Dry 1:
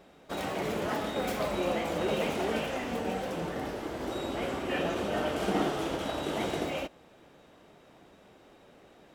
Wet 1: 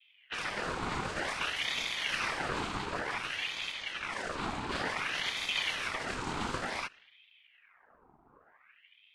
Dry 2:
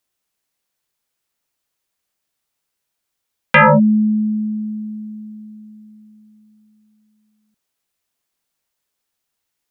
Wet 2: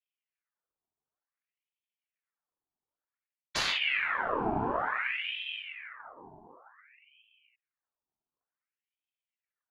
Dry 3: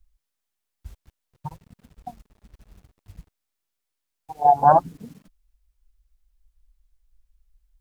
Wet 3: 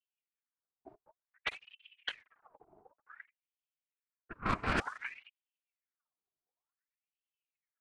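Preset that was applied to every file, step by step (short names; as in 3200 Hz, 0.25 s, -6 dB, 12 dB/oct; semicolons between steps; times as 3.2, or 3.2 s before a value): reverse; compressor 16:1, threshold -26 dBFS; reverse; added harmonics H 8 -17 dB, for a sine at -15.5 dBFS; noise vocoder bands 6; low-pass opened by the level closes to 430 Hz, open at -29.5 dBFS; ring modulator with a swept carrier 1700 Hz, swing 70%, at 0.55 Hz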